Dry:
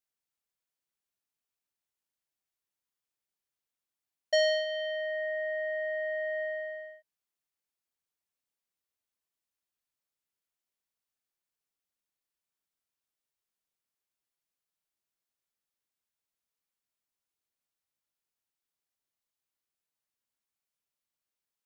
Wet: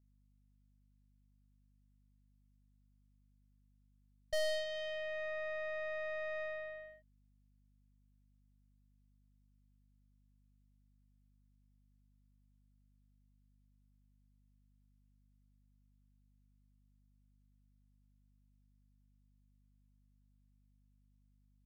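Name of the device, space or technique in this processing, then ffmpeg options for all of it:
valve amplifier with mains hum: -af "aeval=exprs='(tanh(28.2*val(0)+0.75)-tanh(0.75))/28.2':c=same,aeval=exprs='val(0)+0.000501*(sin(2*PI*50*n/s)+sin(2*PI*2*50*n/s)/2+sin(2*PI*3*50*n/s)/3+sin(2*PI*4*50*n/s)/4+sin(2*PI*5*50*n/s)/5)':c=same,volume=-3.5dB"

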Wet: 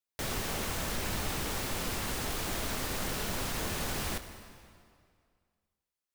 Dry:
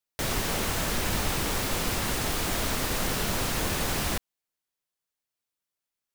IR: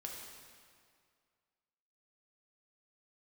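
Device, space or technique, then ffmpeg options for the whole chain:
saturated reverb return: -filter_complex "[0:a]asplit=2[a][b];[1:a]atrim=start_sample=2205[c];[b][c]afir=irnorm=-1:irlink=0,asoftclip=type=tanh:threshold=-31.5dB,volume=0dB[d];[a][d]amix=inputs=2:normalize=0,volume=-8.5dB"

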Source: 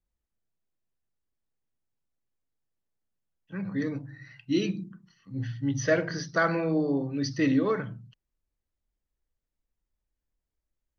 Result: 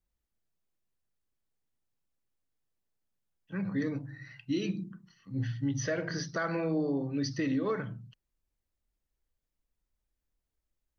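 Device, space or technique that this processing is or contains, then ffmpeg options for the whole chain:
stacked limiters: -af "alimiter=limit=-18.5dB:level=0:latency=1:release=136,alimiter=limit=-22.5dB:level=0:latency=1:release=320"

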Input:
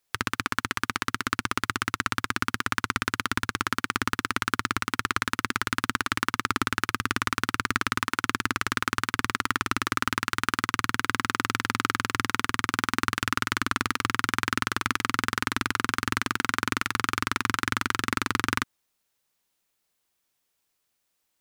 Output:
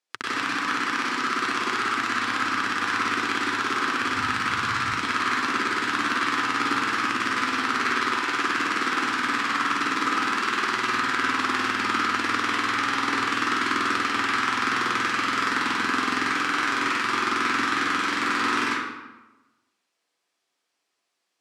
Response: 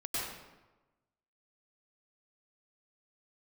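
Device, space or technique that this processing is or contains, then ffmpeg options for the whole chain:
supermarket ceiling speaker: -filter_complex "[0:a]asplit=3[a][b][c];[a]afade=t=out:st=4.01:d=0.02[d];[b]asubboost=boost=11:cutoff=100,afade=t=in:st=4.01:d=0.02,afade=t=out:st=4.87:d=0.02[e];[c]afade=t=in:st=4.87:d=0.02[f];[d][e][f]amix=inputs=3:normalize=0,highpass=260,lowpass=6.8k[g];[1:a]atrim=start_sample=2205[h];[g][h]afir=irnorm=-1:irlink=0"

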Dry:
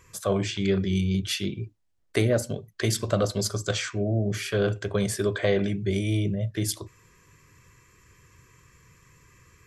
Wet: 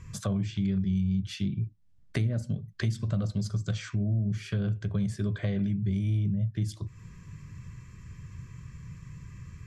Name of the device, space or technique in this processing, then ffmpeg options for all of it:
jukebox: -af "lowpass=7.3k,lowshelf=f=270:t=q:w=1.5:g=13,acompressor=threshold=-31dB:ratio=3"

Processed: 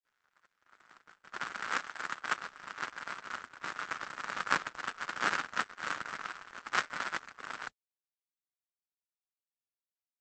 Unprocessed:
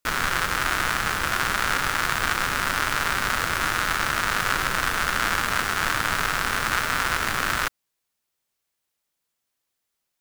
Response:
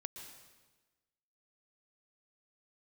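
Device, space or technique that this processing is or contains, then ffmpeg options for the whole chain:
video call: -filter_complex "[0:a]asplit=3[a][b][c];[a]afade=t=out:st=1.63:d=0.02[d];[b]equalizer=f=160:t=o:w=1.4:g=-5,afade=t=in:st=1.63:d=0.02,afade=t=out:st=2.37:d=0.02[e];[c]afade=t=in:st=2.37:d=0.02[f];[d][e][f]amix=inputs=3:normalize=0,highpass=f=170:w=0.5412,highpass=f=170:w=1.3066,dynaudnorm=f=670:g=3:m=4dB,agate=range=-60dB:threshold=-16dB:ratio=16:detection=peak,volume=6.5dB" -ar 48000 -c:a libopus -b:a 12k

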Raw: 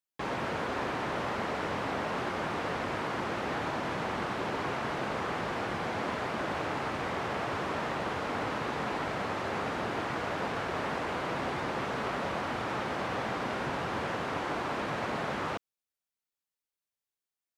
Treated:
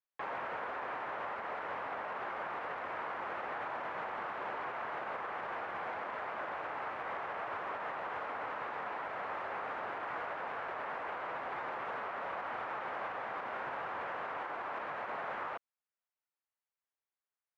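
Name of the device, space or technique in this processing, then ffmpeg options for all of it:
DJ mixer with the lows and highs turned down: -filter_complex "[0:a]acrossover=split=530 2400:gain=0.126 1 0.0794[a][b][c];[a][b][c]amix=inputs=3:normalize=0,alimiter=level_in=8.5dB:limit=-24dB:level=0:latency=1:release=93,volume=-8.5dB,volume=1.5dB"

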